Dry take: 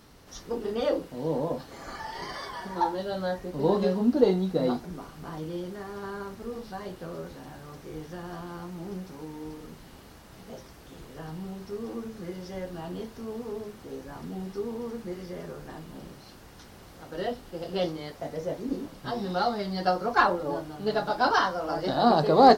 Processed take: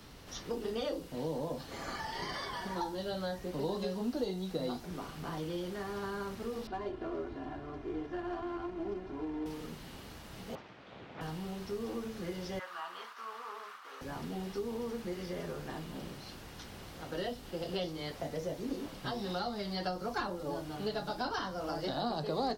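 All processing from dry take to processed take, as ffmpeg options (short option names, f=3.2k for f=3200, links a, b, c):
-filter_complex "[0:a]asettb=1/sr,asplit=3[a][b][c];[a]atrim=end=6.674[d];[b]atrim=start=6.67:end=9.46,asetpts=PTS-STARTPTS,afade=t=in:d=0.004:c=qsin,afade=t=out:st=2.786:d=0.004:c=qsin,highshelf=f=5.2k:g=5.5,aecho=1:1:2.9:1,atrim=end_sample=123039,adynamicsmooth=sensitivity=2:basefreq=1.4k[e];[c]atrim=start=9.456[f];[d][e]acrossfade=d=0.004:c1=hsin:c2=qsin[g];[g][f]acrossfade=d=0.004:c1=qsin:c2=hsin,asettb=1/sr,asplit=3[h][i][j];[h]atrim=end=10.554[k];[i]atrim=start=10.55:end=11.21,asetpts=PTS-STARTPTS,afade=t=in:d=0.004:c=qsin,afade=t=out:st=0.656:d=0.004:c=qsin,aemphasis=mode=reproduction:type=50fm,aeval=exprs='abs(val(0))':c=same,highpass=120,lowpass=3.4k[l];[j]atrim=start=11.206[m];[k][l]acrossfade=d=0.004:c1=hsin:c2=qsin[n];[n][m]acrossfade=d=0.004:c1=qsin:c2=hsin,asettb=1/sr,asplit=3[o][p][q];[o]atrim=end=12.594[r];[p]atrim=start=12.59:end=14.01,asetpts=PTS-STARTPTS,afade=t=in:d=0.004:c=qsin,afade=t=out:st=1.416:d=0.004:c=qsin,agate=range=-33dB:threshold=-45dB:ratio=3:release=100:detection=peak,highpass=f=1.2k:t=q:w=4.3,highshelf=f=3.9k:g=-8[s];[q]atrim=start=14.006[t];[r][s]acrossfade=d=0.004:c1=hsin:c2=qsin[u];[u][t]acrossfade=d=0.004:c1=qsin:c2=hsin,equalizer=f=3k:w=1.1:g=4.5,acrossover=split=86|340|4600[v][w][x][y];[v]acompressor=threshold=-58dB:ratio=4[z];[w]acompressor=threshold=-43dB:ratio=4[aa];[x]acompressor=threshold=-38dB:ratio=4[ab];[y]acompressor=threshold=-49dB:ratio=4[ac];[z][aa][ab][ac]amix=inputs=4:normalize=0,lowshelf=f=110:g=4.5"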